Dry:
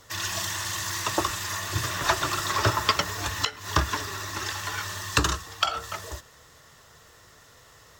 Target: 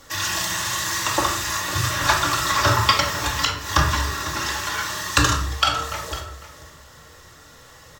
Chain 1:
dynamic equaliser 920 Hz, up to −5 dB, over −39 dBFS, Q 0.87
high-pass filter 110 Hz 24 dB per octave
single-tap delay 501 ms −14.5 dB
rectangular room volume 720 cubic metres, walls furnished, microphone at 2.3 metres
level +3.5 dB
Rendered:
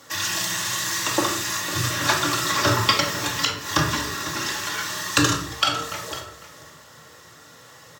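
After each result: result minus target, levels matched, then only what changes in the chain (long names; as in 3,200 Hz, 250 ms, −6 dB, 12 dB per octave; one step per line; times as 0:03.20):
250 Hz band +4.5 dB; 125 Hz band −2.0 dB
change: dynamic equaliser 340 Hz, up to −5 dB, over −39 dBFS, Q 0.87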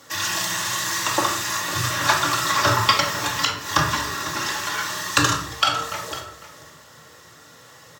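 125 Hz band −4.0 dB
remove: high-pass filter 110 Hz 24 dB per octave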